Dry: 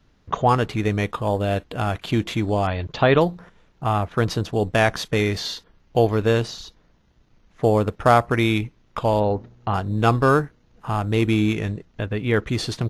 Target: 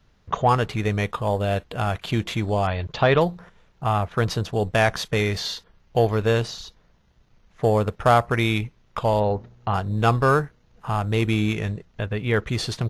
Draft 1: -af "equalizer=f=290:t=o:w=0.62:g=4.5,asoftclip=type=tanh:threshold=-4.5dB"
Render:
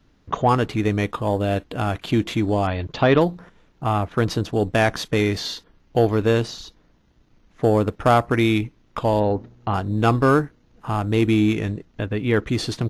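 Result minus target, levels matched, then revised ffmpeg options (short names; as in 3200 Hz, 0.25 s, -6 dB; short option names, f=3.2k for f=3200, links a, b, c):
250 Hz band +4.0 dB
-af "equalizer=f=290:t=o:w=0.62:g=-6.5,asoftclip=type=tanh:threshold=-4.5dB"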